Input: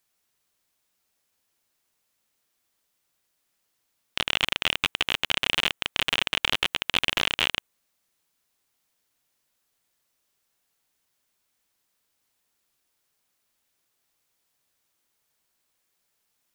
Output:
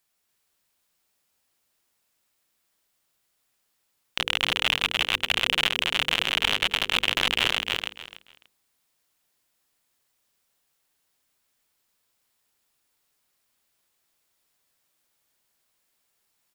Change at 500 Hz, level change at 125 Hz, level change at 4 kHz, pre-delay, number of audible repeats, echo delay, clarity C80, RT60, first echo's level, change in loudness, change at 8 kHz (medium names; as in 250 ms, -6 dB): +1.5 dB, +1.0 dB, +2.0 dB, no reverb, 3, 292 ms, no reverb, no reverb, -3.0 dB, +1.5 dB, +1.0 dB